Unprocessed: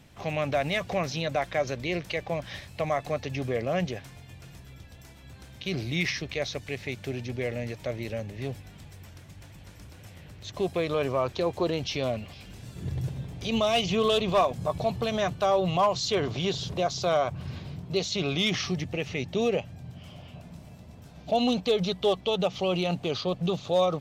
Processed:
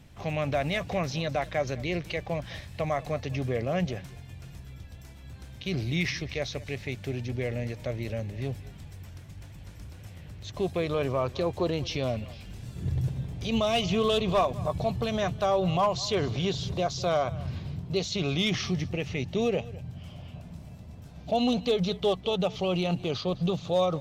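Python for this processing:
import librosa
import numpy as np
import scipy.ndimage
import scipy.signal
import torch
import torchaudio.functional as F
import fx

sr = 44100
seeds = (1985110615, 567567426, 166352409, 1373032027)

p1 = fx.low_shelf(x, sr, hz=140.0, db=8.5)
p2 = p1 + fx.echo_single(p1, sr, ms=206, db=-19.5, dry=0)
y = F.gain(torch.from_numpy(p2), -2.0).numpy()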